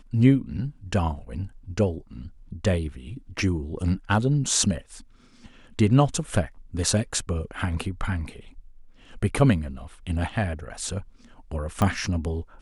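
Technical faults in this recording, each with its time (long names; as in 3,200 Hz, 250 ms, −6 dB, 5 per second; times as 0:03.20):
0:11.82: click −11 dBFS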